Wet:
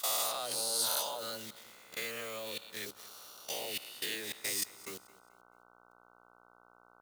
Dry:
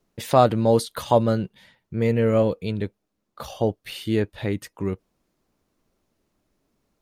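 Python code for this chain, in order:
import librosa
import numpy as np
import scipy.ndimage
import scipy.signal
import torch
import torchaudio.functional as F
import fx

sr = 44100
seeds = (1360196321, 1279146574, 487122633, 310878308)

p1 = fx.spec_swells(x, sr, rise_s=1.57)
p2 = fx.dispersion(p1, sr, late='lows', ms=109.0, hz=380.0)
p3 = fx.quant_dither(p2, sr, seeds[0], bits=6, dither='none')
p4 = p2 + F.gain(torch.from_numpy(p3), -7.0).numpy()
p5 = fx.level_steps(p4, sr, step_db=22)
p6 = fx.peak_eq(p5, sr, hz=4000.0, db=4.0, octaves=1.6)
p7 = fx.dmg_buzz(p6, sr, base_hz=60.0, harmonics=25, level_db=-43.0, tilt_db=-3, odd_only=False)
p8 = np.diff(p7, prepend=0.0)
p9 = p8 + fx.echo_feedback(p8, sr, ms=218, feedback_pct=35, wet_db=-20.0, dry=0)
y = F.gain(torch.from_numpy(p9), 2.0).numpy()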